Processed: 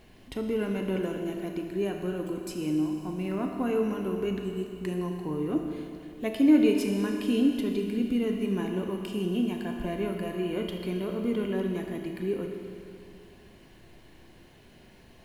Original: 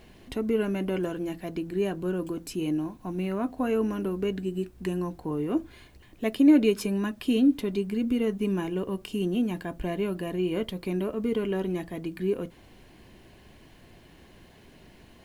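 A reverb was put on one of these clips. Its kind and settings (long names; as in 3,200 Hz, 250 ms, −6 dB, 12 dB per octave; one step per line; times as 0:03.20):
four-comb reverb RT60 2.6 s, combs from 26 ms, DRR 3 dB
level −3 dB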